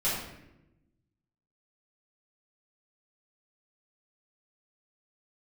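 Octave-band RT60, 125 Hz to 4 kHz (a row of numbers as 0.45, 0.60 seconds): 1.6, 1.4, 1.0, 0.75, 0.80, 0.60 seconds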